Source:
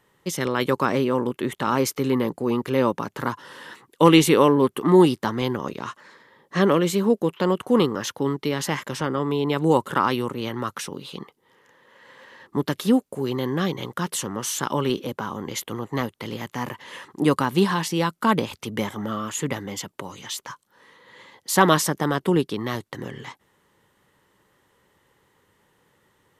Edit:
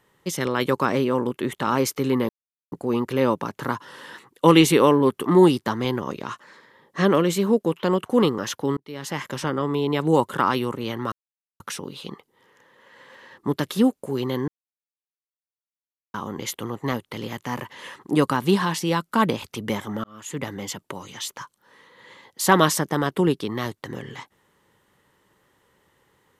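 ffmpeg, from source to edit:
-filter_complex "[0:a]asplit=7[a][b][c][d][e][f][g];[a]atrim=end=2.29,asetpts=PTS-STARTPTS,afade=t=out:st=2.286:d=0.004:c=hsin,apad=pad_dur=0.43[h];[b]atrim=start=2.29:end=8.34,asetpts=PTS-STARTPTS,afade=t=in:d=0.004:c=hsin,afade=t=out:st=6.046:d=0.004:c=hsin[i];[c]atrim=start=8.34:end=10.69,asetpts=PTS-STARTPTS,afade=t=in:d=0.56,afade=t=out:st=2.346:d=0.004:c=hsin,apad=pad_dur=0.48[j];[d]atrim=start=10.69:end=13.57,asetpts=PTS-STARTPTS,afade=t=in:d=0.004:c=hsin,afade=t=out:st=2.876:d=0.004:c=hsin[k];[e]atrim=start=13.57:end=15.23,asetpts=PTS-STARTPTS,volume=0[l];[f]atrim=start=15.23:end=19.13,asetpts=PTS-STARTPTS,afade=t=in:d=0.004:c=hsin,afade=t=out:st=3.896:d=0.004:c=hsin[m];[g]atrim=start=19.13,asetpts=PTS-STARTPTS,afade=t=in:d=0.52[n];[h][i][j][k][l][m][n]concat=n=7:v=0:a=1"

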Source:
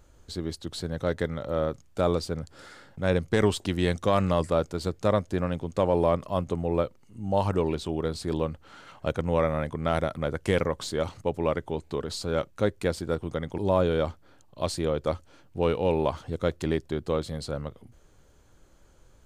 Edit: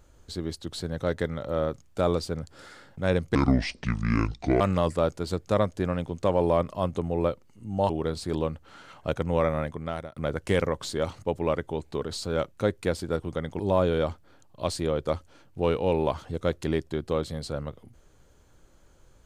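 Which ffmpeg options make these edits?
-filter_complex "[0:a]asplit=5[a][b][c][d][e];[a]atrim=end=3.354[f];[b]atrim=start=3.35:end=4.14,asetpts=PTS-STARTPTS,asetrate=27783,aresample=44100[g];[c]atrim=start=4.136:end=7.432[h];[d]atrim=start=7.878:end=10.15,asetpts=PTS-STARTPTS,afade=t=out:st=1.692:d=0.58:silence=0.0707946[i];[e]atrim=start=10.15,asetpts=PTS-STARTPTS,afade=t=in:d=0.004:c=hsin:silence=0.0707946[j];[f][g]acrossfade=d=0.004:c1=hsin:c2=hsin[k];[k][h]acrossfade=d=0.004:c1=hsin:c2=hsin[l];[i][j]concat=n=2:v=0:a=1[m];[l][m]acrossfade=d=0.004:c1=hsin:c2=hsin"

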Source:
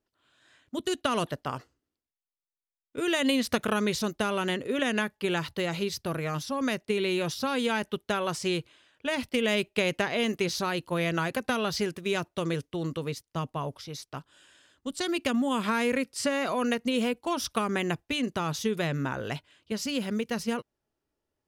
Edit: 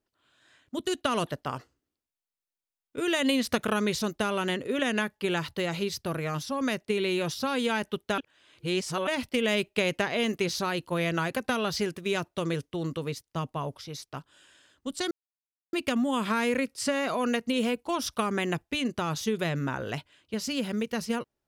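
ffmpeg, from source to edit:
-filter_complex "[0:a]asplit=4[a][b][c][d];[a]atrim=end=8.182[e];[b]atrim=start=8.178:end=9.072,asetpts=PTS-STARTPTS,areverse[f];[c]atrim=start=9.068:end=15.11,asetpts=PTS-STARTPTS,afade=t=out:st=6.038:d=0.004:c=hsin,apad=pad_dur=0.62[g];[d]atrim=start=15.11,asetpts=PTS-STARTPTS,afade=t=in:d=0.004:c=hsin[h];[e][f]acrossfade=d=0.004:c1=hsin:c2=hsin[i];[g][h]concat=n=2:v=0:a=1[j];[i][j]acrossfade=d=0.004:c1=hsin:c2=hsin"

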